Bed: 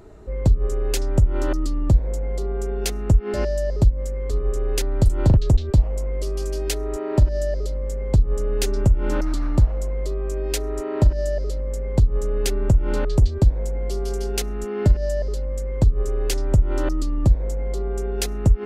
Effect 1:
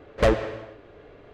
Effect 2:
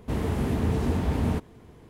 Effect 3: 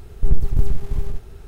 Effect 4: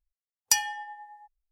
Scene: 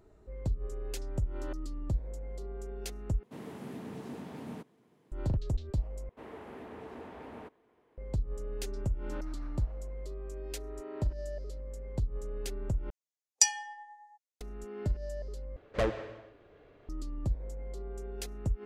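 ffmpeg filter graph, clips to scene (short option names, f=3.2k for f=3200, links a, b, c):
-filter_complex "[2:a]asplit=2[a][b];[0:a]volume=-15.5dB[c];[a]highpass=f=150:w=0.5412,highpass=f=150:w=1.3066[d];[b]acrossover=split=310 2900:gain=0.0891 1 0.2[e][f][g];[e][f][g]amix=inputs=3:normalize=0[h];[4:a]highpass=f=220:w=0.5412,highpass=f=220:w=1.3066,equalizer=f=590:t=q:w=4:g=4,equalizer=f=980:t=q:w=4:g=-9,equalizer=f=1.5k:t=q:w=4:g=-9,equalizer=f=3k:t=q:w=4:g=-6,equalizer=f=6.5k:t=q:w=4:g=7,lowpass=f=9k:w=0.5412,lowpass=f=9k:w=1.3066[i];[c]asplit=5[j][k][l][m][n];[j]atrim=end=3.234[o];[d]atrim=end=1.89,asetpts=PTS-STARTPTS,volume=-14dB[p];[k]atrim=start=5.116:end=6.094[q];[h]atrim=end=1.89,asetpts=PTS-STARTPTS,volume=-12dB[r];[l]atrim=start=7.976:end=12.904[s];[i]atrim=end=1.51,asetpts=PTS-STARTPTS,volume=-2.5dB[t];[m]atrim=start=14.406:end=15.564[u];[1:a]atrim=end=1.33,asetpts=PTS-STARTPTS,volume=-10dB[v];[n]atrim=start=16.886[w];[o][p]acrossfade=d=0.004:c1=hsin:c2=hsin[x];[x][q]acrossfade=d=0.004:c1=hsin:c2=hsin[y];[y][r]acrossfade=d=0.004:c1=hsin:c2=hsin[z];[z][s]acrossfade=d=0.004:c1=hsin:c2=hsin[aa];[aa][t]acrossfade=d=0.004:c1=hsin:c2=hsin[ab];[ab][u]acrossfade=d=0.004:c1=hsin:c2=hsin[ac];[ac][v]acrossfade=d=0.004:c1=hsin:c2=hsin[ad];[ad][w]acrossfade=d=0.004:c1=hsin:c2=hsin"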